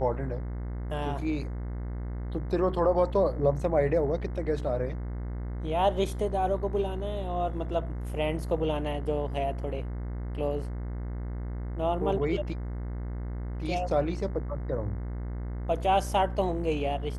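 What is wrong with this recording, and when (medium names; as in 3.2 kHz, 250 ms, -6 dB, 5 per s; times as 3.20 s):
buzz 60 Hz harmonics 36 -34 dBFS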